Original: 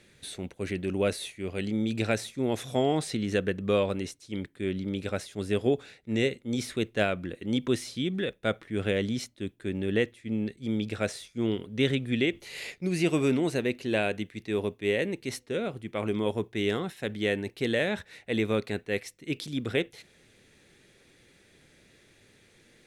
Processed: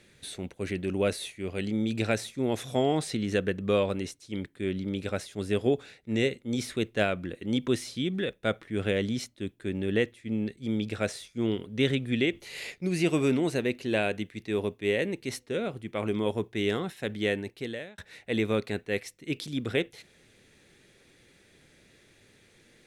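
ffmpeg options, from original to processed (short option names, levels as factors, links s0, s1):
-filter_complex "[0:a]asplit=2[s0][s1];[s0]atrim=end=17.98,asetpts=PTS-STARTPTS,afade=t=out:st=17.28:d=0.7[s2];[s1]atrim=start=17.98,asetpts=PTS-STARTPTS,afade=t=in:d=0.004:c=hsin[s3];[s2][s3]concat=n=2:v=0:a=1"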